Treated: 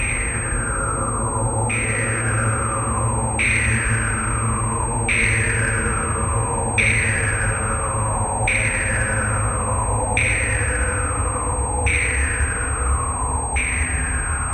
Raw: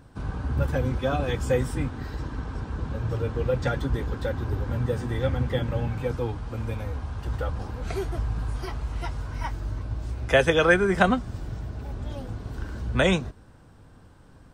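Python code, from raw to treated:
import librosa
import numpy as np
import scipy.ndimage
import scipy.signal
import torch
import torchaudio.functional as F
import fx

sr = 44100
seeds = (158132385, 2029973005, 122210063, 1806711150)

p1 = fx.rattle_buzz(x, sr, strikes_db=-26.0, level_db=-16.0)
p2 = fx.over_compress(p1, sr, threshold_db=-30.0, ratio=-1.0)
p3 = p1 + (p2 * librosa.db_to_amplitude(1.0))
p4 = fx.paulstretch(p3, sr, seeds[0], factor=26.0, window_s=0.25, from_s=6.47)
p5 = fx.filter_lfo_lowpass(p4, sr, shape='saw_down', hz=0.59, low_hz=830.0, high_hz=2300.0, q=7.0)
y = fx.pwm(p5, sr, carrier_hz=8400.0)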